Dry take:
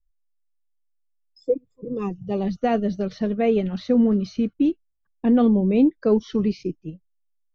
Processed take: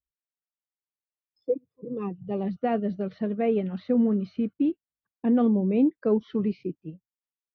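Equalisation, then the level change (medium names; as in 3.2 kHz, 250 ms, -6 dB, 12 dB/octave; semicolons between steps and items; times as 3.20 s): band-pass 100–3400 Hz; distance through air 150 m; -4.0 dB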